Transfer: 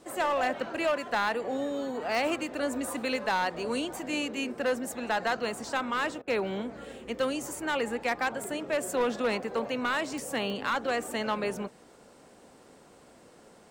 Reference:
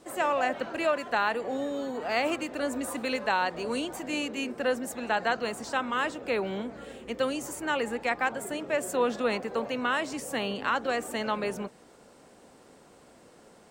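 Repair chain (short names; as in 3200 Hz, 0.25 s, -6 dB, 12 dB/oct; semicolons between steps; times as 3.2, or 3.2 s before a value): clip repair -22 dBFS; de-click; interpolate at 6.22, 53 ms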